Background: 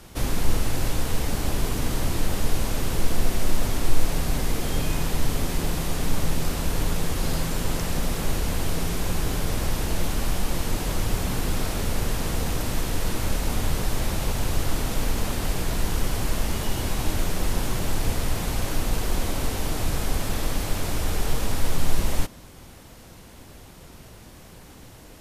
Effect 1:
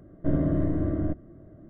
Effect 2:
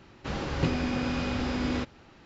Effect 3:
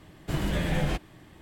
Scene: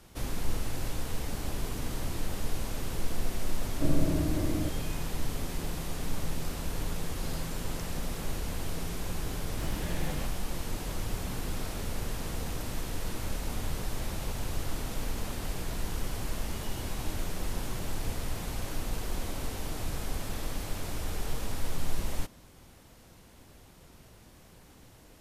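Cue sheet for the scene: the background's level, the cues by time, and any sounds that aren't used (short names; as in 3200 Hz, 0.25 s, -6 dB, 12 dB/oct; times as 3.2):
background -9 dB
3.56 add 1 -4.5 dB
9.3 add 3 -10 dB
not used: 2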